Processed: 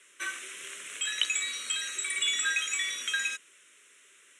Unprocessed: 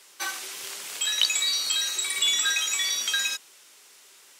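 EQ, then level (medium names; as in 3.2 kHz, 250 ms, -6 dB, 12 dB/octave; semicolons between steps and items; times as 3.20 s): high-pass 270 Hz 6 dB/octave; steep low-pass 9.8 kHz 36 dB/octave; static phaser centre 2 kHz, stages 4; 0.0 dB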